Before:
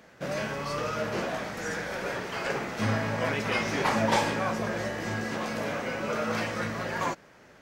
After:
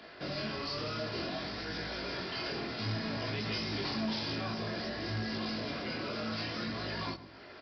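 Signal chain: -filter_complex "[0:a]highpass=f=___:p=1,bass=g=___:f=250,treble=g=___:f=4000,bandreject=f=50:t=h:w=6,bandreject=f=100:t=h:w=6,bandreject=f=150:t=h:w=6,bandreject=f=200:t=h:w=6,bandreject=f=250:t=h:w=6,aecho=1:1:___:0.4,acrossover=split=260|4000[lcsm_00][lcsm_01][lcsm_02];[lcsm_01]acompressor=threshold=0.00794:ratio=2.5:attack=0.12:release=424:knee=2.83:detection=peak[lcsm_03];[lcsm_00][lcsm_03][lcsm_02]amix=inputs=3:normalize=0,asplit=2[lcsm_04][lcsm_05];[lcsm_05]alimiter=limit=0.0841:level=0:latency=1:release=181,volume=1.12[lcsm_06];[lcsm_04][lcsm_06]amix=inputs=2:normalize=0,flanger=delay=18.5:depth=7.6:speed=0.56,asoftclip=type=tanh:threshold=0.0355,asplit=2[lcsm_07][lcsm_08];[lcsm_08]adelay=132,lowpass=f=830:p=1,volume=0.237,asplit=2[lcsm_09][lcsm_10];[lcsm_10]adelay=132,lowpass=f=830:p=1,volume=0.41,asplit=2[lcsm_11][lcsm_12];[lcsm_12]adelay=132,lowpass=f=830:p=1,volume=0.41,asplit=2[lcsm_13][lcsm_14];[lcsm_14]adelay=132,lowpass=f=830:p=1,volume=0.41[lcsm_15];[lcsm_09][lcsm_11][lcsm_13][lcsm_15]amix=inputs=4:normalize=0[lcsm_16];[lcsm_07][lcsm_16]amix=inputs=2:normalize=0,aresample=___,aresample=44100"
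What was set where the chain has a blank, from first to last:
43, -1, 12, 2.9, 11025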